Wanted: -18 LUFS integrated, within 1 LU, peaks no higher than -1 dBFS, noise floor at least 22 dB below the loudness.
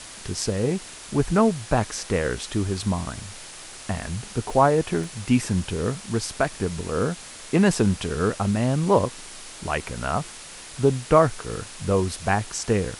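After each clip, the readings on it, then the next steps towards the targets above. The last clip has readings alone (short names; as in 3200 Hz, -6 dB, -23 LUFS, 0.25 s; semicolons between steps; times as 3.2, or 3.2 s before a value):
dropouts 3; longest dropout 2.0 ms; noise floor -41 dBFS; noise floor target -47 dBFS; loudness -24.5 LUFS; peak -4.0 dBFS; loudness target -18.0 LUFS
-> interpolate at 4.5/5.04/7.75, 2 ms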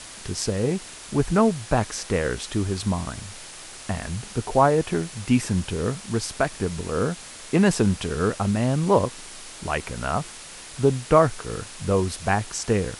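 dropouts 0; noise floor -41 dBFS; noise floor target -47 dBFS
-> noise print and reduce 6 dB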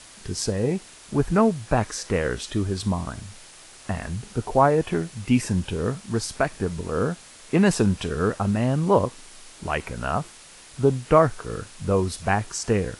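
noise floor -47 dBFS; loudness -24.5 LUFS; peak -4.0 dBFS; loudness target -18.0 LUFS
-> gain +6.5 dB; limiter -1 dBFS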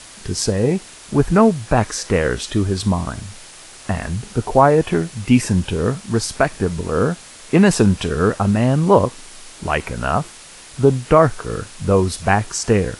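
loudness -18.0 LUFS; peak -1.0 dBFS; noise floor -41 dBFS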